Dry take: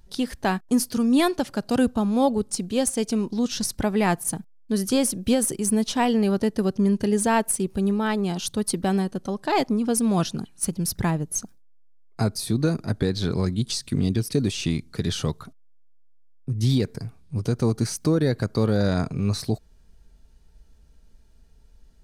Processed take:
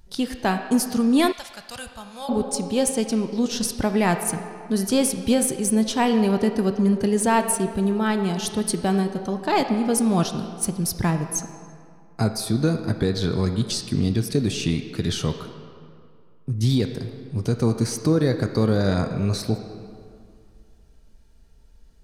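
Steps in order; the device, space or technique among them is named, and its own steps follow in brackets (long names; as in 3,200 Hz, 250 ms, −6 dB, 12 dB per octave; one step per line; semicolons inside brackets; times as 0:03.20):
filtered reverb send (on a send: high-pass filter 300 Hz 6 dB per octave + low-pass filter 5,200 Hz 12 dB per octave + convolution reverb RT60 2.4 s, pre-delay 10 ms, DRR 6.5 dB)
0:01.32–0:02.29: on the sum: guitar amp tone stack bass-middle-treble 10-0-10
level +1 dB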